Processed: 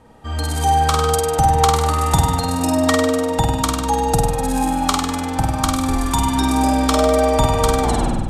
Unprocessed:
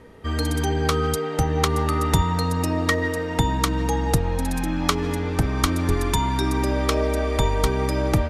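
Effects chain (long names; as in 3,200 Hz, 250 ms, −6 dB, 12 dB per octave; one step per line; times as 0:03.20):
turntable brake at the end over 0.47 s
thirty-one-band graphic EQ 400 Hz −9 dB, 800 Hz +11 dB, 2,000 Hz −7 dB, 8,000 Hz +7 dB
automatic gain control
on a send: flutter between parallel walls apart 8.5 metres, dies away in 1.1 s
on the sum: level −2.5 dB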